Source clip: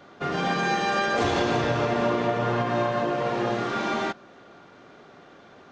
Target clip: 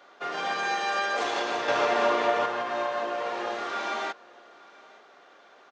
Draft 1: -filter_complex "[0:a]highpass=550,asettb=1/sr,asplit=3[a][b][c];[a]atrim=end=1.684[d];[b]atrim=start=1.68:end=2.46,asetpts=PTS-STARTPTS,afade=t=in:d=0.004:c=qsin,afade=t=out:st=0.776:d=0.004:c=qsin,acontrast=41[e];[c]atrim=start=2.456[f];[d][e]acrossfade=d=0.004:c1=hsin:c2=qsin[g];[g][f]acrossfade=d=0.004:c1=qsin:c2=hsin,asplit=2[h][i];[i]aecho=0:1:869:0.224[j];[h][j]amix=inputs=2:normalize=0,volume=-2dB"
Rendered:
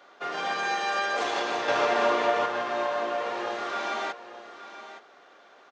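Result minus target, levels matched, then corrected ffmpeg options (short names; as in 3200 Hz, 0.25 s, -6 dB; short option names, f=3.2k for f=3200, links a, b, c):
echo-to-direct +10.5 dB
-filter_complex "[0:a]highpass=550,asettb=1/sr,asplit=3[a][b][c];[a]atrim=end=1.684[d];[b]atrim=start=1.68:end=2.46,asetpts=PTS-STARTPTS,afade=t=in:d=0.004:c=qsin,afade=t=out:st=0.776:d=0.004:c=qsin,acontrast=41[e];[c]atrim=start=2.456[f];[d][e]acrossfade=d=0.004:c1=hsin:c2=qsin[g];[g][f]acrossfade=d=0.004:c1=qsin:c2=hsin,asplit=2[h][i];[i]aecho=0:1:869:0.0668[j];[h][j]amix=inputs=2:normalize=0,volume=-2dB"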